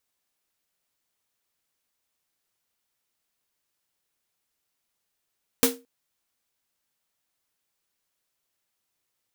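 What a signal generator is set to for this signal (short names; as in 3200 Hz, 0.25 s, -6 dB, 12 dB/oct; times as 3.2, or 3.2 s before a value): snare drum length 0.22 s, tones 260 Hz, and 470 Hz, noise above 510 Hz, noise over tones 2 dB, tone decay 0.29 s, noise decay 0.21 s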